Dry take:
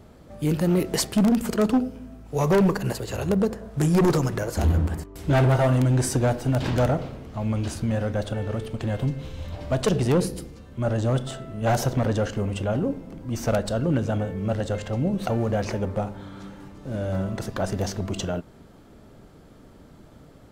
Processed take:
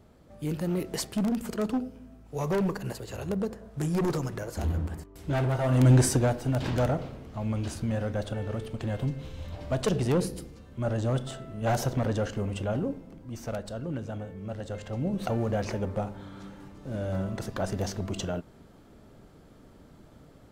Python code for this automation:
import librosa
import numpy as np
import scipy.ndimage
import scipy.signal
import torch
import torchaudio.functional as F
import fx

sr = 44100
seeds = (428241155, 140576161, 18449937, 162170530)

y = fx.gain(x, sr, db=fx.line((5.62, -8.0), (5.9, 3.5), (6.34, -4.5), (12.78, -4.5), (13.44, -11.0), (14.54, -11.0), (15.2, -4.0)))